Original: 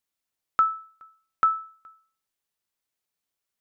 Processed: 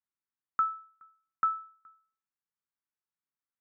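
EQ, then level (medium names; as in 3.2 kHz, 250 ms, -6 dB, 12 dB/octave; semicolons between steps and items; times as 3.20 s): band-pass 110–2100 Hz; static phaser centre 1.4 kHz, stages 4; -6.0 dB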